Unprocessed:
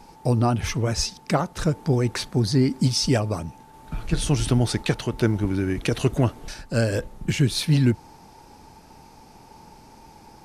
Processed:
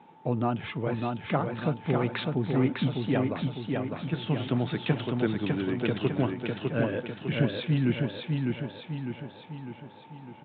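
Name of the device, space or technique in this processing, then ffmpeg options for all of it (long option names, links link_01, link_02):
Bluetooth headset: -filter_complex "[0:a]asettb=1/sr,asplit=3[link_01][link_02][link_03];[link_01]atrim=end=1.934[link_04];[link_02]atrim=start=1.93:end=2.35,asetpts=PTS-STARTPTS,afade=type=in:duration=0.004:curve=qsin,afade=type=out:start_time=0.416:duration=0.004:curve=qsin,equalizer=frequency=4500:width_type=o:width=2.2:gain=8[link_05];[link_03]atrim=start=2.346[link_06];[link_04][link_05]acrossfade=duration=0.004:curve1=hsin:curve2=qsin[link_07];[link_07][link_06]acrossfade=duration=0.004:curve1=qsin:curve2=hsin,highpass=frequency=130:width=0.5412,highpass=frequency=130:width=1.3066,aecho=1:1:603|1206|1809|2412|3015|3618|4221:0.668|0.348|0.181|0.094|0.0489|0.0254|0.0132,aresample=8000,aresample=44100,volume=-5.5dB" -ar 16000 -c:a sbc -b:a 64k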